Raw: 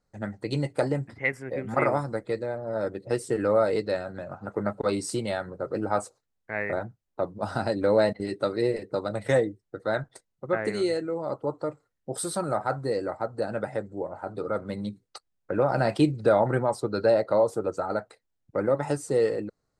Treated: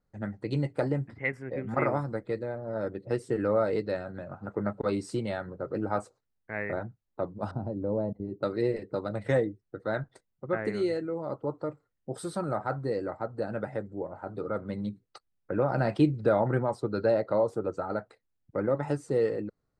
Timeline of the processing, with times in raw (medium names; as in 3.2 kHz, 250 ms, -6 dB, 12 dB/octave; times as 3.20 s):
7.51–8.43 s: FFT filter 130 Hz 0 dB, 1 kHz -9 dB, 1.7 kHz -27 dB
whole clip: low-pass 1.8 kHz 6 dB/octave; peaking EQ 690 Hz -4 dB 1.7 oct